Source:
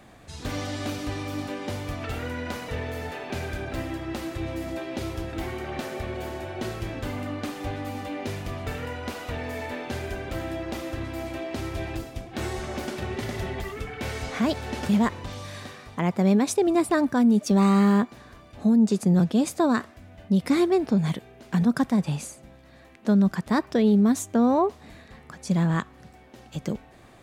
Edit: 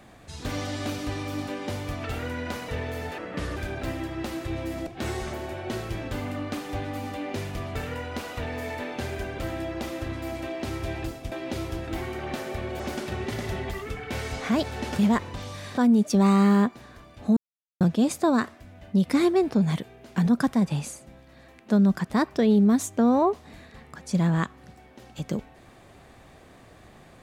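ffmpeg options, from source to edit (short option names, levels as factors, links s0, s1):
-filter_complex "[0:a]asplit=10[s0][s1][s2][s3][s4][s5][s6][s7][s8][s9];[s0]atrim=end=3.184[s10];[s1]atrim=start=3.18:end=3.47,asetpts=PTS-STARTPTS,asetrate=33075,aresample=44100[s11];[s2]atrim=start=3.466:end=4.772[s12];[s3]atrim=start=12.228:end=12.702[s13];[s4]atrim=start=6.248:end=12.232[s14];[s5]atrim=start=4.768:end=6.252[s15];[s6]atrim=start=12.698:end=15.682[s16];[s7]atrim=start=17.138:end=18.73,asetpts=PTS-STARTPTS,afade=t=out:st=1.588:d=0.004:c=hsin[s17];[s8]atrim=start=18.73:end=19.17,asetpts=PTS-STARTPTS,volume=0[s18];[s9]atrim=start=19.17,asetpts=PTS-STARTPTS,afade=t=in:d=0.004:c=hsin[s19];[s10][s11]acrossfade=d=0.004:c1=hsin:c2=hsin[s20];[s20][s12]acrossfade=d=0.004:c1=hsin:c2=hsin[s21];[s21][s13]acrossfade=d=0.004:c1=hsin:c2=hsin[s22];[s22][s14]acrossfade=d=0.004:c1=hsin:c2=hsin[s23];[s23][s15]acrossfade=d=0.004:c1=hsin:c2=hsin[s24];[s24][s16]acrossfade=d=0.004:c1=hsin:c2=hsin[s25];[s17][s18][s19]concat=n=3:v=0:a=1[s26];[s25][s26]acrossfade=d=0.004:c1=hsin:c2=hsin"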